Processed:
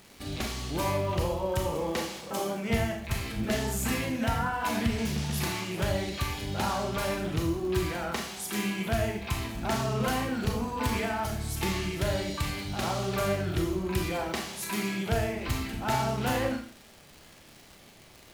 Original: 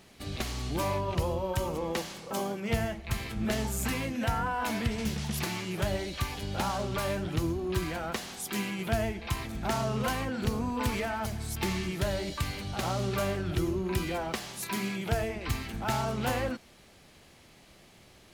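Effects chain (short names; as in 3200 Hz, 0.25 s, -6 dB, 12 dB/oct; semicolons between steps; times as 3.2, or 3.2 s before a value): crackle 170/s -40 dBFS; Schroeder reverb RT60 0.47 s, combs from 27 ms, DRR 2.5 dB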